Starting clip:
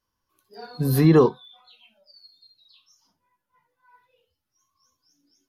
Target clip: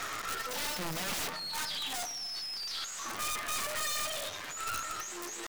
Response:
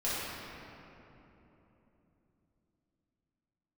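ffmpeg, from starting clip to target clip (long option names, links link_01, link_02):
-filter_complex "[0:a]aeval=exprs='val(0)+0.5*0.0447*sgn(val(0))':channel_layout=same,asplit=2[link_01][link_02];[link_02]acompressor=threshold=-30dB:ratio=6,volume=-0.5dB[link_03];[link_01][link_03]amix=inputs=2:normalize=0,asetrate=53981,aresample=44100,atempo=0.816958,bandpass=frequency=1700:width_type=q:width=0.62:csg=0,aeval=exprs='(mod(17.8*val(0)+1,2)-1)/17.8':channel_layout=same,asplit=2[link_04][link_05];[1:a]atrim=start_sample=2205[link_06];[link_05][link_06]afir=irnorm=-1:irlink=0,volume=-20dB[link_07];[link_04][link_07]amix=inputs=2:normalize=0,aeval=exprs='0.0841*(cos(1*acos(clip(val(0)/0.0841,-1,1)))-cos(1*PI/2))+0.0237*(cos(2*acos(clip(val(0)/0.0841,-1,1)))-cos(2*PI/2))':channel_layout=same,volume=-6dB"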